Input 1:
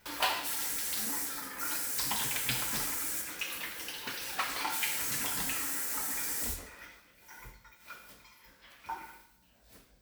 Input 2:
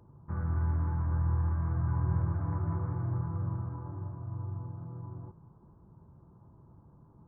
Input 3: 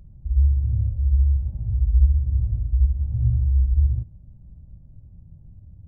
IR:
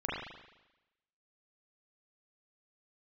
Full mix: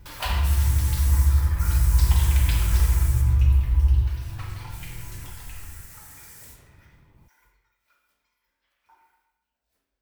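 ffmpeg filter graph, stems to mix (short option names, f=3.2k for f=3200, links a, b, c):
-filter_complex "[0:a]lowshelf=f=180:g=-9,volume=-4dB,afade=t=out:st=2.93:d=0.55:silence=0.298538,afade=t=out:st=7.03:d=0.79:silence=0.375837,asplit=2[a][b];[b]volume=-5.5dB[c];[1:a]volume=0dB[d];[2:a]acompressor=threshold=-19dB:ratio=6,volume=-6.5dB,asplit=2[e][f];[f]volume=-6dB[g];[3:a]atrim=start_sample=2205[h];[c][g]amix=inputs=2:normalize=0[i];[i][h]afir=irnorm=-1:irlink=0[j];[a][d][e][j]amix=inputs=4:normalize=0,asubboost=boost=3.5:cutoff=77"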